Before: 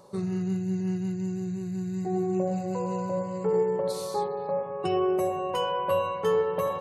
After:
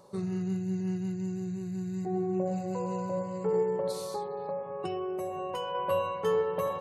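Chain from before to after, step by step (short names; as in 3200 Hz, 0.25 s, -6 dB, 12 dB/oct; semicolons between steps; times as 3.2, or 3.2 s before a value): 2.05–2.46 high shelf 4400 Hz -12 dB; 3.96–5.75 compressor, threshold -28 dBFS, peak gain reduction 6.5 dB; gain -3 dB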